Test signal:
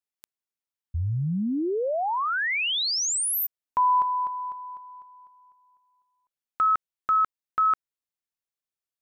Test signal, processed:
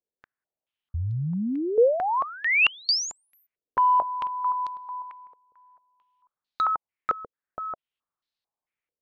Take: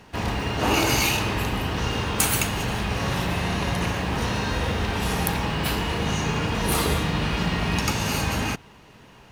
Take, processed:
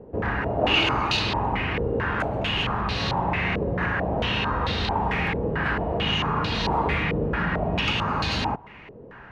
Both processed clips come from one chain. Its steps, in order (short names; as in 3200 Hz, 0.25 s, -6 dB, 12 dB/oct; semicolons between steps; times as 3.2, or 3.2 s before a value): in parallel at +0.5 dB: compressor 10:1, threshold -34 dBFS; on the sum: overloaded stage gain 16 dB; stepped low-pass 4.5 Hz 480–4100 Hz; gain -4 dB